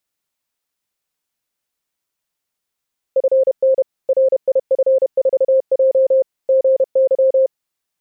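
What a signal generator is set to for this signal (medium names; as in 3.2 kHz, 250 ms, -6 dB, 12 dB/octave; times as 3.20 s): Morse "FN RIF4J GY" 31 wpm 529 Hz -9.5 dBFS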